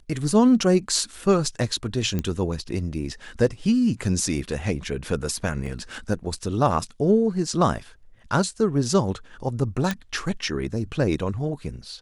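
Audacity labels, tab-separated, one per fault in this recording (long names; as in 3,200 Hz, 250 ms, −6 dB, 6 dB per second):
2.190000	2.190000	click −13 dBFS
5.660000	5.660000	drop-out 3.4 ms
9.910000	9.910000	click −10 dBFS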